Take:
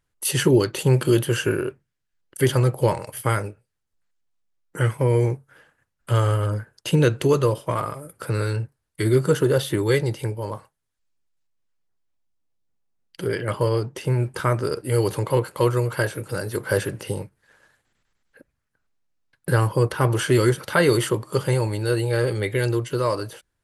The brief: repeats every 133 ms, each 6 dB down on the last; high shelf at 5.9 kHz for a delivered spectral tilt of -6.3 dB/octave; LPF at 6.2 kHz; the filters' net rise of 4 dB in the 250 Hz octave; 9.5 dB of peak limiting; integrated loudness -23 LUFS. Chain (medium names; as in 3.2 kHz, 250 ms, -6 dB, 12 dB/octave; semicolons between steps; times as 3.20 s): low-pass 6.2 kHz; peaking EQ 250 Hz +6.5 dB; treble shelf 5.9 kHz +4 dB; peak limiter -12 dBFS; feedback delay 133 ms, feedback 50%, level -6 dB; trim -0.5 dB